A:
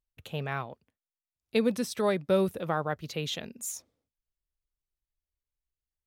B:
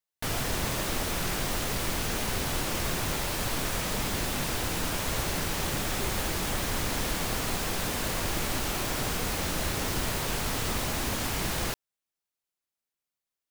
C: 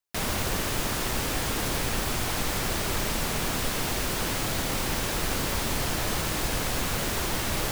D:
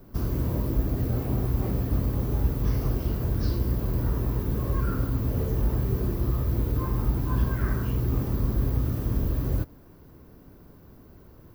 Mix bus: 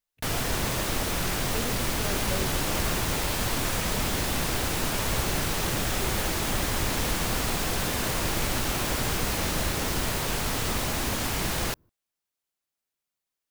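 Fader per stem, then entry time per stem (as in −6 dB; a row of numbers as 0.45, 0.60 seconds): −11.0, +2.0, −8.5, −15.5 decibels; 0.00, 0.00, 1.90, 0.35 seconds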